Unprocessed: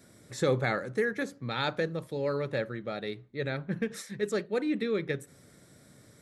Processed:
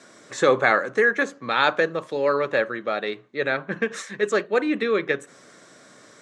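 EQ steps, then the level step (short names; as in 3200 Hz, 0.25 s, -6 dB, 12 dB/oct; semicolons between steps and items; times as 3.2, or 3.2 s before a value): dynamic EQ 5200 Hz, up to -6 dB, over -58 dBFS, Q 1.8; speaker cabinet 300–7900 Hz, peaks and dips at 670 Hz +3 dB, 1100 Hz +9 dB, 1600 Hz +5 dB, 2800 Hz +5 dB, 6400 Hz +5 dB; +8.5 dB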